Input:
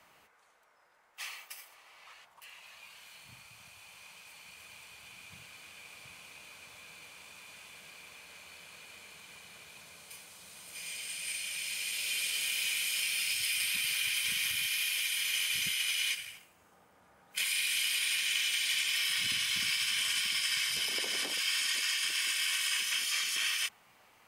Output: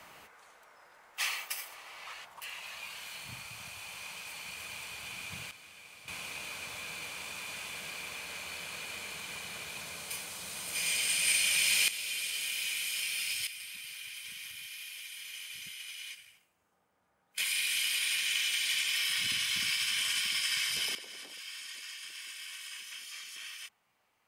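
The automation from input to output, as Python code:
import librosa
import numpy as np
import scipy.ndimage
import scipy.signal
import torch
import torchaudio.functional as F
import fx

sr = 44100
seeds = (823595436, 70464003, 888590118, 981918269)

y = fx.gain(x, sr, db=fx.steps((0.0, 9.0), (5.51, -1.5), (6.08, 10.0), (11.88, -2.0), (13.47, -12.0), (17.38, 0.0), (20.95, -12.5)))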